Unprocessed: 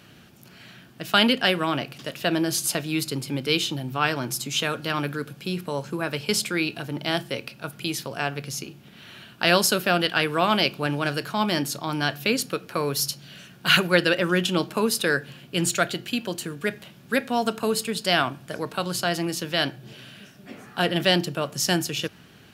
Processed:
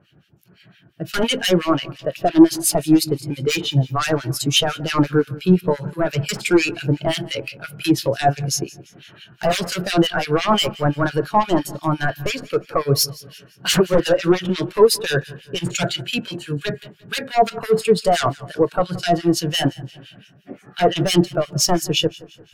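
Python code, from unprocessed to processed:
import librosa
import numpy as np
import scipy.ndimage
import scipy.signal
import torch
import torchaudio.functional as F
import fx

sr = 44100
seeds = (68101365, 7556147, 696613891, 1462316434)

p1 = fx.peak_eq(x, sr, hz=230.0, db=-9.0, octaves=0.33)
p2 = fx.rider(p1, sr, range_db=10, speed_s=2.0)
p3 = p1 + (p2 * 10.0 ** (0.0 / 20.0))
p4 = fx.fold_sine(p3, sr, drive_db=17, ceiling_db=3.5)
p5 = fx.harmonic_tremolo(p4, sr, hz=5.8, depth_pct=100, crossover_hz=1600.0)
p6 = p5 + fx.echo_feedback(p5, sr, ms=173, feedback_pct=54, wet_db=-14.5, dry=0)
p7 = fx.spectral_expand(p6, sr, expansion=1.5)
y = p7 * 10.0 ** (-9.5 / 20.0)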